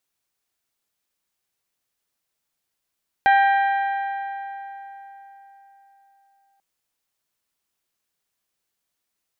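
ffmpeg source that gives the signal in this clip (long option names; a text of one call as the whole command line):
ffmpeg -f lavfi -i "aevalsrc='0.237*pow(10,-3*t/3.98)*sin(2*PI*791*t)+0.119*pow(10,-3*t/3.233)*sin(2*PI*1582*t)+0.0596*pow(10,-3*t/3.061)*sin(2*PI*1898.4*t)+0.0299*pow(10,-3*t/2.863)*sin(2*PI*2373*t)+0.015*pow(10,-3*t/2.626)*sin(2*PI*3164*t)+0.0075*pow(10,-3*t/2.456)*sin(2*PI*3955*t)':duration=3.34:sample_rate=44100" out.wav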